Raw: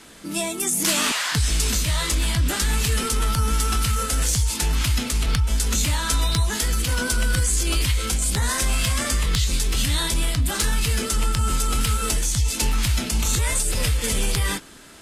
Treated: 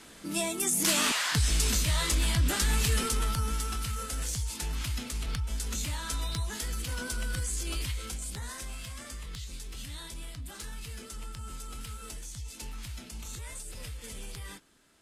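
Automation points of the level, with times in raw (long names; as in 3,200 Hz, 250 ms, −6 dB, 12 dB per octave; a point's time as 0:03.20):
0:02.96 −5 dB
0:03.76 −12 dB
0:07.81 −12 dB
0:08.84 −19.5 dB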